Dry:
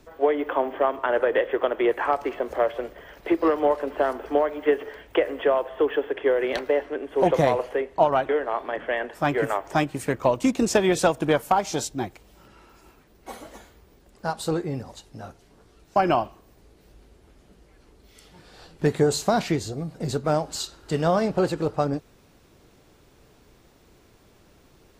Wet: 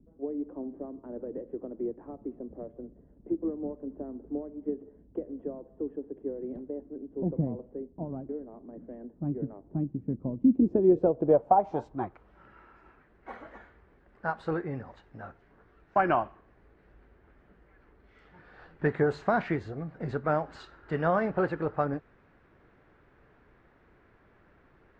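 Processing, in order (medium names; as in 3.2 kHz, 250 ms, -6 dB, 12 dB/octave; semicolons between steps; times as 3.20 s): low-pass sweep 230 Hz -> 1.7 kHz, 10.41–12.43 s; trim -6 dB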